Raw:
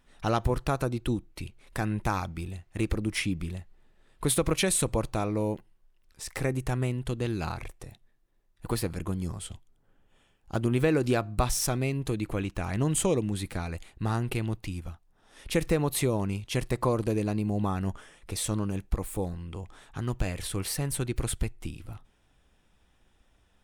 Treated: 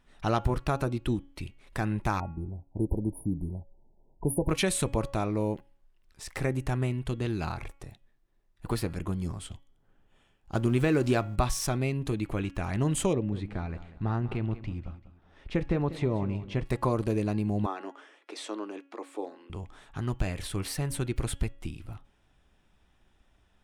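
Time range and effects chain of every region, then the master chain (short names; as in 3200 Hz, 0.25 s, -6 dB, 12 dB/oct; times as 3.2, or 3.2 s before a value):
2.2–4.49 low-pass opened by the level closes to 970 Hz, open at -27 dBFS + brick-wall FIR band-stop 1000–9300 Hz
10.55–11.36 G.711 law mismatch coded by mu + bell 7100 Hz +3.5 dB 0.7 oct
13.13–16.65 tape spacing loss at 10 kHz 25 dB + feedback echo 0.193 s, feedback 34%, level -14.5 dB
17.66–19.5 steep high-pass 280 Hz 48 dB/oct + air absorption 88 m
whole clip: high shelf 6800 Hz -7.5 dB; notch 490 Hz, Q 13; de-hum 278.4 Hz, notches 12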